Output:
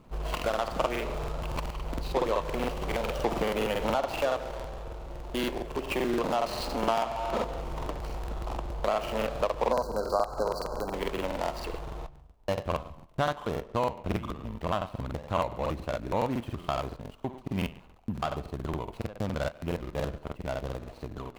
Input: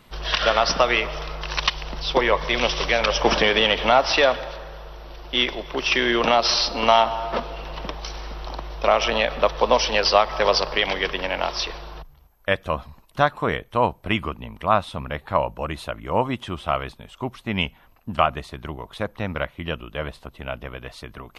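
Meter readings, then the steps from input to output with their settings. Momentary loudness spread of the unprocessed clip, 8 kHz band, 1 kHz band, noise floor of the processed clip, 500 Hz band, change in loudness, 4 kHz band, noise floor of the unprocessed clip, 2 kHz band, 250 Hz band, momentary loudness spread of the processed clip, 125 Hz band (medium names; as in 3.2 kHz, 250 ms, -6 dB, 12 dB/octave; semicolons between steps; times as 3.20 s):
17 LU, -12.0 dB, -9.5 dB, -52 dBFS, -7.5 dB, -10.5 dB, -17.5 dB, -53 dBFS, -15.0 dB, -4.5 dB, 10 LU, -3.0 dB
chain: median filter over 25 samples; compression 2.5:1, threshold -28 dBFS, peak gain reduction 10.5 dB; tape echo 71 ms, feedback 48%, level -13.5 dB, low-pass 5.9 kHz; spectral selection erased 9.72–10.88 s, 1.6–3.9 kHz; crackling interface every 0.14 s, samples 2048, repeat, from 0.35 s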